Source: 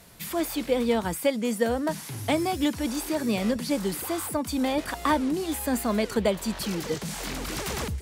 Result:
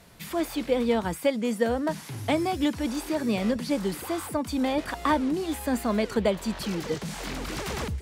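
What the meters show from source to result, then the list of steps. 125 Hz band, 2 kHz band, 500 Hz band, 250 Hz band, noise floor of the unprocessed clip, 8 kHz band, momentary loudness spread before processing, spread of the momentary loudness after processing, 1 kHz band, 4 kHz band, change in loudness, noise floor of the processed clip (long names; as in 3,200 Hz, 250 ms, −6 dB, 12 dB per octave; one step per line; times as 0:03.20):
0.0 dB, −0.5 dB, 0.0 dB, 0.0 dB, −40 dBFS, −5.0 dB, 6 LU, 7 LU, 0.0 dB, −2.0 dB, −0.5 dB, −41 dBFS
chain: high-shelf EQ 6,700 Hz −8.5 dB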